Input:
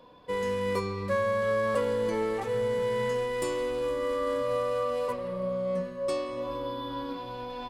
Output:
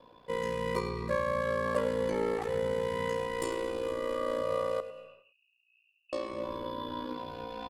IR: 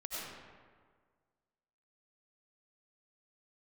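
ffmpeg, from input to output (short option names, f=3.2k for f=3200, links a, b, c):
-filter_complex "[0:a]aeval=exprs='val(0)*sin(2*PI*29*n/s)':c=same,asettb=1/sr,asplit=3[a][b][c];[a]atrim=end=4.804[d];[b]atrim=start=4.8:end=6.13,asetpts=PTS-STARTPTS,afade=t=in:d=0.004:c=qsin,afade=t=out:st=1.326:d=0.004:c=qsin,asuperpass=centerf=2700:order=20:qfactor=6.8[e];[c]atrim=start=6.126[f];[d][e]acrossfade=d=0.004:c1=hsin:c2=qsin[g];[g][f]acrossfade=d=0.004:c1=qsin:c2=hsin,aecho=1:1:100:0.188,asplit=2[h][i];[1:a]atrim=start_sample=2205,afade=t=out:st=0.36:d=0.01,atrim=end_sample=16317,adelay=109[j];[i][j]afir=irnorm=-1:irlink=0,volume=-17.5dB[k];[h][k]amix=inputs=2:normalize=0"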